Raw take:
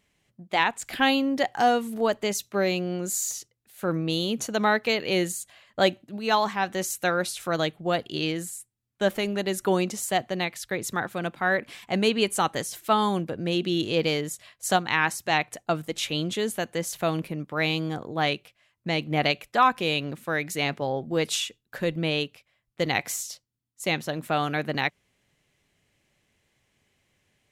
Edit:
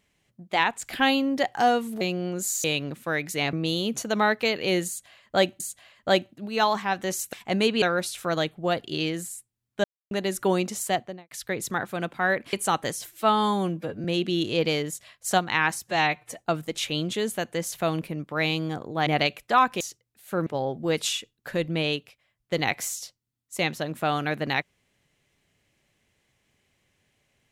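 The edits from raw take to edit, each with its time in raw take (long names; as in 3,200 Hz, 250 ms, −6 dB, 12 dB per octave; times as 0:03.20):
0:02.01–0:02.68: remove
0:03.31–0:03.97: swap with 0:19.85–0:20.74
0:05.31–0:06.04: repeat, 2 plays
0:09.06–0:09.33: silence
0:10.11–0:10.53: fade out and dull
0:11.75–0:12.24: move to 0:07.04
0:12.78–0:13.43: time-stretch 1.5×
0:15.23–0:15.59: time-stretch 1.5×
0:18.27–0:19.11: remove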